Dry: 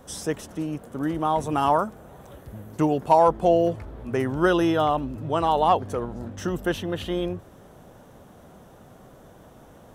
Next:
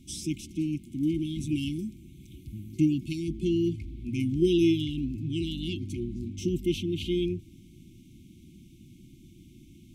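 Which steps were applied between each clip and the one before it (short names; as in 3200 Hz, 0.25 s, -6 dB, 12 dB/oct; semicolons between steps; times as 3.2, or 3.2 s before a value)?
FFT band-reject 370–2100 Hz; high shelf 10000 Hz -8.5 dB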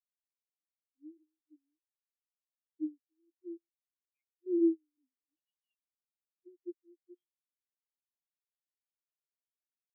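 LFO band-pass square 0.56 Hz 530–1900 Hz; tilt +2.5 dB/oct; spectral expander 4:1; gain +8 dB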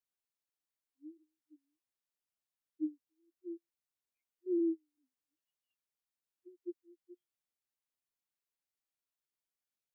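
limiter -27 dBFS, peak gain reduction 7.5 dB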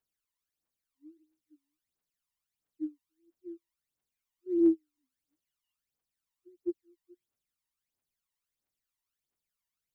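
phaser 1.5 Hz, delay 1.1 ms, feedback 71%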